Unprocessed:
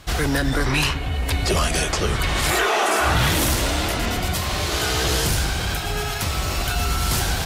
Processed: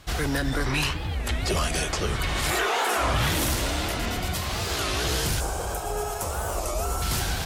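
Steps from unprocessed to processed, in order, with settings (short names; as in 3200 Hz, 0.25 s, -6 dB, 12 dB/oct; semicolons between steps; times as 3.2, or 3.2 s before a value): 5.4–7.02 graphic EQ 125/250/500/1000/2000/4000/8000 Hz -7/-5/+9/+5/-9/-11/+6 dB; record warp 33 1/3 rpm, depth 250 cents; gain -5 dB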